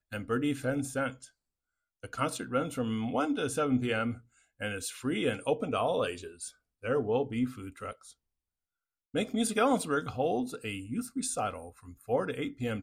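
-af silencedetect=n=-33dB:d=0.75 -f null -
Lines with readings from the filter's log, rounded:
silence_start: 1.10
silence_end: 2.04 | silence_duration: 0.94
silence_start: 7.91
silence_end: 9.15 | silence_duration: 1.24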